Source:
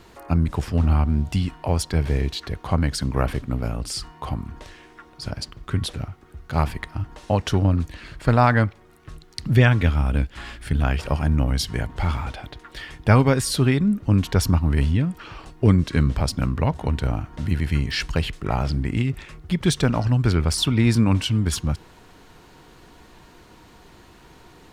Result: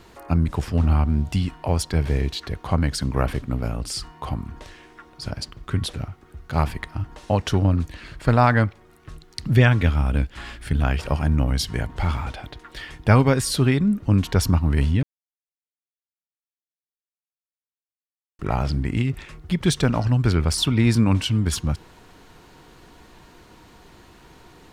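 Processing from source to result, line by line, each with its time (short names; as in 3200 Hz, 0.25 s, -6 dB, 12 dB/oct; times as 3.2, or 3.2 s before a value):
15.03–18.39 mute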